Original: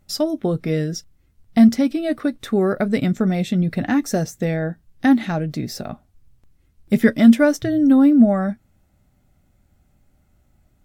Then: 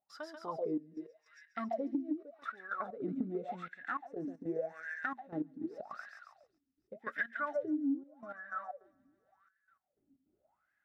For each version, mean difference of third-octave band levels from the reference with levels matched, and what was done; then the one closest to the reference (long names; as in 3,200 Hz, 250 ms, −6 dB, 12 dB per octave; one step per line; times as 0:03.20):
9.5 dB: on a send: feedback echo with a high-pass in the loop 138 ms, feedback 74%, high-pass 970 Hz, level −3.5 dB
on the sum: LFO wah 0.86 Hz 260–1,700 Hz, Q 21
downward compressor 8 to 1, threshold −42 dBFS, peak gain reduction 27 dB
gate pattern ".xxxxxxx..x..xx" 155 BPM −12 dB
level +9.5 dB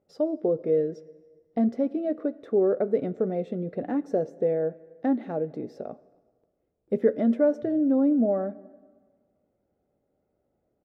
7.0 dB: resonant band-pass 470 Hz, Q 3.6
far-end echo of a speakerphone 270 ms, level −29 dB
dense smooth reverb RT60 1.6 s, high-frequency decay 0.9×, DRR 19.5 dB
in parallel at −2 dB: brickwall limiter −20.5 dBFS, peak gain reduction 10 dB
on the sum: level −1.5 dB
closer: second